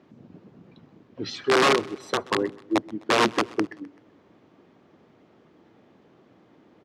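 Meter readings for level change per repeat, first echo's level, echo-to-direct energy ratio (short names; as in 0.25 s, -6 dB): -6.0 dB, -22.5 dB, -21.5 dB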